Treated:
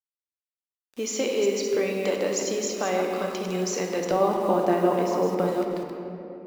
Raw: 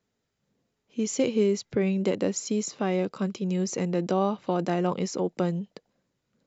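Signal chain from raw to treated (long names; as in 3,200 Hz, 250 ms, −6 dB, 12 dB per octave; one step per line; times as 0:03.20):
delay that plays each chunk backwards 162 ms, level −6 dB
low-pass that shuts in the quiet parts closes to 2,100 Hz, open at −20 dBFS
high-pass filter 450 Hz 12 dB per octave
0:04.11–0:05.48: spectral tilt −3 dB per octave
in parallel at −1.5 dB: downward compressor 6 to 1, threshold −33 dBFS, peak gain reduction 12.5 dB
on the sum: bit-depth reduction 8 bits, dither none
rectangular room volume 140 cubic metres, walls hard, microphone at 0.34 metres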